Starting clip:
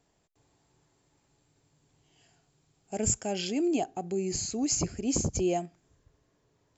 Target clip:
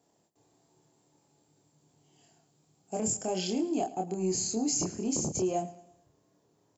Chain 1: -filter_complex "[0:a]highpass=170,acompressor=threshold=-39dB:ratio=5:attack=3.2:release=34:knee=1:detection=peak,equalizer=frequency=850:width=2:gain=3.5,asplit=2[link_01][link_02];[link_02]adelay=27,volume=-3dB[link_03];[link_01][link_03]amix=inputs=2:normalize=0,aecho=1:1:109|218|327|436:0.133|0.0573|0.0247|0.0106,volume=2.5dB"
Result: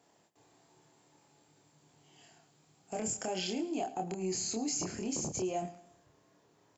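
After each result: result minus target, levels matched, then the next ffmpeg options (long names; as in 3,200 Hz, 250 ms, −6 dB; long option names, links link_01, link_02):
2,000 Hz band +7.5 dB; downward compressor: peak gain reduction +6.5 dB
-filter_complex "[0:a]highpass=170,equalizer=frequency=1900:width=0.53:gain=-9.5,acompressor=threshold=-39dB:ratio=5:attack=3.2:release=34:knee=1:detection=peak,equalizer=frequency=850:width=2:gain=3.5,asplit=2[link_01][link_02];[link_02]adelay=27,volume=-3dB[link_03];[link_01][link_03]amix=inputs=2:normalize=0,aecho=1:1:109|218|327|436:0.133|0.0573|0.0247|0.0106,volume=2.5dB"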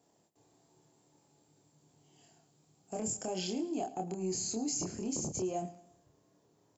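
downward compressor: peak gain reduction +5.5 dB
-filter_complex "[0:a]highpass=170,equalizer=frequency=1900:width=0.53:gain=-9.5,acompressor=threshold=-32dB:ratio=5:attack=3.2:release=34:knee=1:detection=peak,equalizer=frequency=850:width=2:gain=3.5,asplit=2[link_01][link_02];[link_02]adelay=27,volume=-3dB[link_03];[link_01][link_03]amix=inputs=2:normalize=0,aecho=1:1:109|218|327|436:0.133|0.0573|0.0247|0.0106,volume=2.5dB"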